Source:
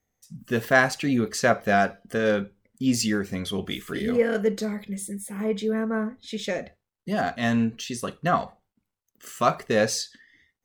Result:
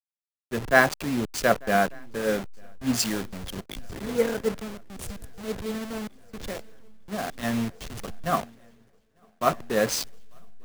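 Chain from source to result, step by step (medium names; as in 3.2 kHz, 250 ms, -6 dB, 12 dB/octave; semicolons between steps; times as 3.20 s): send-on-delta sampling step -24.5 dBFS; shuffle delay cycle 1196 ms, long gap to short 3:1, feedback 68%, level -22.5 dB; three bands expanded up and down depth 70%; trim -3.5 dB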